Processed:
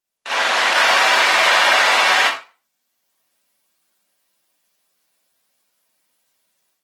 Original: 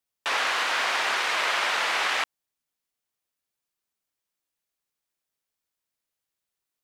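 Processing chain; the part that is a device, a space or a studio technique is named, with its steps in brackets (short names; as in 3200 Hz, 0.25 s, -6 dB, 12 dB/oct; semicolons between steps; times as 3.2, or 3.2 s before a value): far-field microphone of a smart speaker (reverb RT60 0.35 s, pre-delay 36 ms, DRR -7.5 dB; HPF 140 Hz 12 dB/oct; AGC gain up to 11 dB; gain -1.5 dB; Opus 16 kbps 48000 Hz)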